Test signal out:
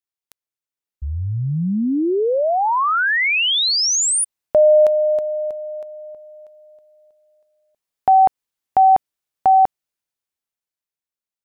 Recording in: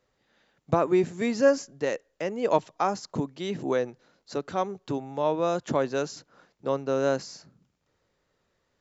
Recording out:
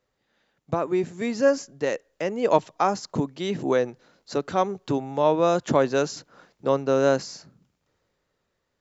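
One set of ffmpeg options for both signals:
ffmpeg -i in.wav -af "dynaudnorm=framelen=230:gausssize=13:maxgain=9.5dB,volume=-3dB" out.wav

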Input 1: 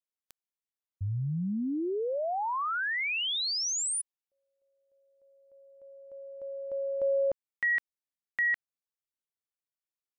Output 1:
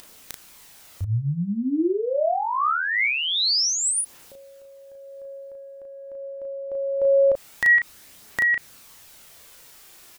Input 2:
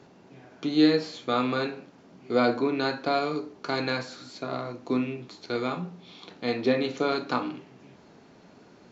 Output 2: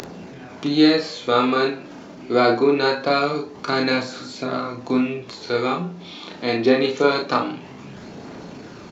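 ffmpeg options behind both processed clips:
ffmpeg -i in.wav -filter_complex "[0:a]acompressor=mode=upward:threshold=-43dB:ratio=4:attack=6.1:release=23:knee=2.83:detection=peak,aphaser=in_gain=1:out_gain=1:delay=3.4:decay=0.3:speed=0.24:type=triangular,asplit=2[link_01][link_02];[link_02]adelay=35,volume=-4dB[link_03];[link_01][link_03]amix=inputs=2:normalize=0,volume=6dB" out.wav

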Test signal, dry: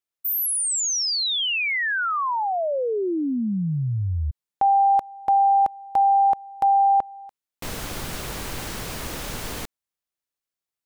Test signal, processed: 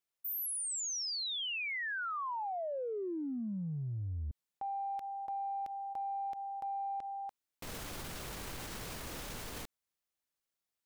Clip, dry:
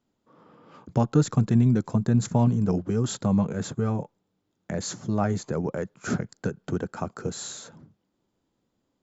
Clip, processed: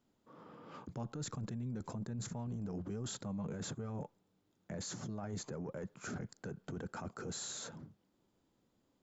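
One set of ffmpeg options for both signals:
ffmpeg -i in.wav -af "areverse,acompressor=threshold=-34dB:ratio=6:attack=2.6:release=23:knee=1:detection=rms,areverse,alimiter=level_in=9.5dB:limit=-24dB:level=0:latency=1:release=49,volume=-9.5dB,volume=-1dB" out.wav

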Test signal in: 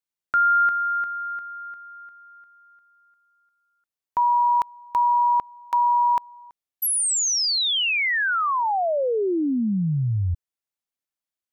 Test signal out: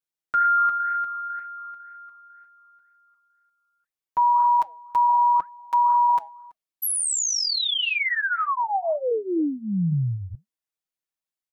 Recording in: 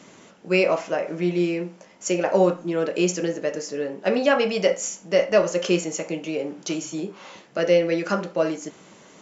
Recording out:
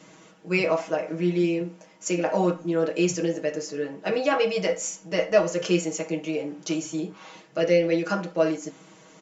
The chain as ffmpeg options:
ffmpeg -i in.wav -af "flanger=delay=1.9:depth=3.6:regen=-88:speed=2:shape=sinusoidal,aecho=1:1:6.3:0.85" out.wav

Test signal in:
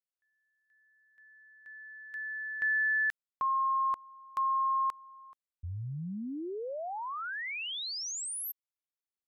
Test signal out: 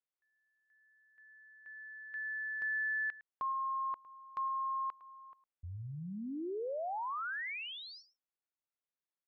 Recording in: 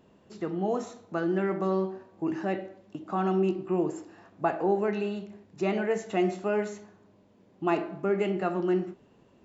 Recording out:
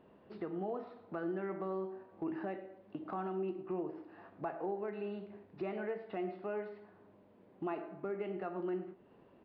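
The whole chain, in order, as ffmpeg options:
ffmpeg -i in.wav -af "bass=frequency=250:gain=-6,treble=frequency=4000:gain=-13,aresample=11025,aresample=44100,acompressor=threshold=-33dB:ratio=4:attack=0.25:release=841:knee=1:detection=peak,highshelf=frequency=3600:gain=-7.5,aecho=1:1:108:0.133" out.wav

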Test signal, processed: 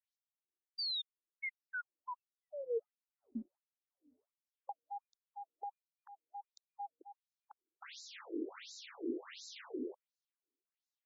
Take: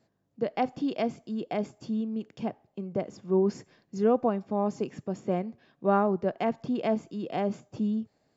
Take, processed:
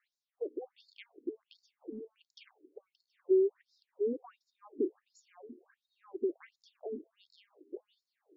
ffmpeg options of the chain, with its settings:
ffmpeg -i in.wav -af "acompressor=threshold=-42dB:ratio=4,lowshelf=frequency=460:width_type=q:width=3:gain=10,afftfilt=real='re*between(b*sr/1024,350*pow(5400/350,0.5+0.5*sin(2*PI*1.4*pts/sr))/1.41,350*pow(5400/350,0.5+0.5*sin(2*PI*1.4*pts/sr))*1.41)':imag='im*between(b*sr/1024,350*pow(5400/350,0.5+0.5*sin(2*PI*1.4*pts/sr))/1.41,350*pow(5400/350,0.5+0.5*sin(2*PI*1.4*pts/sr))*1.41)':win_size=1024:overlap=0.75,volume=3dB" out.wav

